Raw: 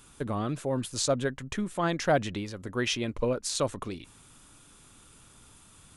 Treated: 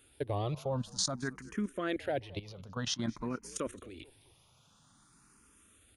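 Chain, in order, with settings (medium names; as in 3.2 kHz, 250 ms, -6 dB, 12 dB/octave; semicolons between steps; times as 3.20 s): high-pass 45 Hz; band-stop 7.7 kHz, Q 5.5; level held to a coarse grid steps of 16 dB; on a send: frequency-shifting echo 217 ms, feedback 48%, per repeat -64 Hz, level -22 dB; on the sum: barber-pole phaser +0.51 Hz; trim +2.5 dB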